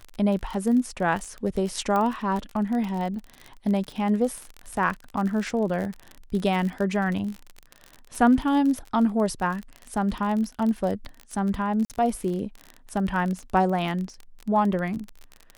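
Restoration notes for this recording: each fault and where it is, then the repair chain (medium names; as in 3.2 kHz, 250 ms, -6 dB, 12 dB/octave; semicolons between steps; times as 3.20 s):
crackle 38 per s -29 dBFS
1.96 s: pop -15 dBFS
11.85–11.90 s: dropout 48 ms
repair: de-click; interpolate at 11.85 s, 48 ms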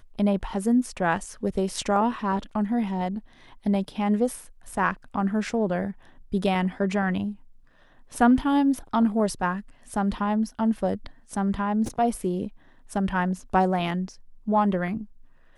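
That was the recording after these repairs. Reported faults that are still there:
1.96 s: pop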